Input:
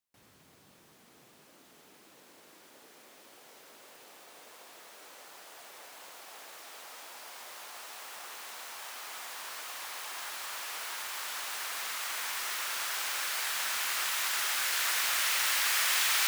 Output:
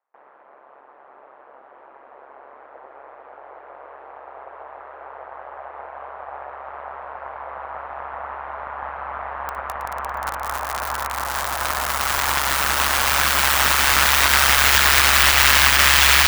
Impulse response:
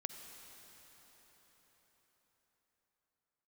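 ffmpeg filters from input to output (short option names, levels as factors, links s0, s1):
-filter_complex "[0:a]highpass=f=580:w=0.5412,highpass=f=580:w=1.3066,equalizer=f=11000:w=0.44:g=-11,asplit=2[s0][s1];[s1]aeval=exprs='0.0188*(abs(mod(val(0)/0.0188+3,4)-2)-1)':c=same,volume=0.376[s2];[s0][s2]amix=inputs=2:normalize=0,aeval=exprs='0.119*(cos(1*acos(clip(val(0)/0.119,-1,1)))-cos(1*PI/2))+0.00668*(cos(3*acos(clip(val(0)/0.119,-1,1)))-cos(3*PI/2))+0.0133*(cos(4*acos(clip(val(0)/0.119,-1,1)))-cos(4*PI/2))+0.00335*(cos(5*acos(clip(val(0)/0.119,-1,1)))-cos(5*PI/2))+0.00473*(cos(7*acos(clip(val(0)/0.119,-1,1)))-cos(7*PI/2))':c=same,acrossover=split=1400[s3][s4];[s4]aeval=exprs='val(0)*gte(abs(val(0)),0.0168)':c=same[s5];[s3][s5]amix=inputs=2:normalize=0,aeval=exprs='val(0)*sin(2*PI*69*n/s)':c=same,alimiter=level_in=18.8:limit=0.891:release=50:level=0:latency=1,volume=0.891"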